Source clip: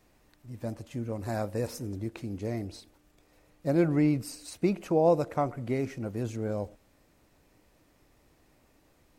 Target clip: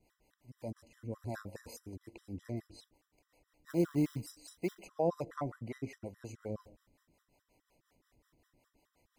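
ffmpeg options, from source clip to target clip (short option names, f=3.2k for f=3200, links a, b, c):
-filter_complex "[0:a]acrossover=split=440[a][b];[a]aeval=exprs='val(0)*(1-0.7/2+0.7/2*cos(2*PI*5.5*n/s))':c=same[c];[b]aeval=exprs='val(0)*(1-0.7/2-0.7/2*cos(2*PI*5.5*n/s))':c=same[d];[c][d]amix=inputs=2:normalize=0,asettb=1/sr,asplit=3[e][f][g];[e]atrim=end=3.704[h];[f]atrim=start=3.7:end=4.81,asetpts=PTS-STARTPTS,afade=t=in:d=0.004:c=qsin,afade=t=out:st=1.106:d=0.004:c=qsin,acrusher=bits=5:mode=log:mix=0:aa=0.000001[i];[g]atrim=start=4.806[j];[h][i]acrossfade=d=0.004:c1=hsin:c2=qsin[k];[k][j]acrossfade=d=0.004:c1=qsin:c2=hsin,afftfilt=real='re*gt(sin(2*PI*4.8*pts/sr)*(1-2*mod(floor(b*sr/1024/1000),2)),0)':imag='im*gt(sin(2*PI*4.8*pts/sr)*(1-2*mod(floor(b*sr/1024/1000),2)),0)':win_size=1024:overlap=0.75,volume=-3dB"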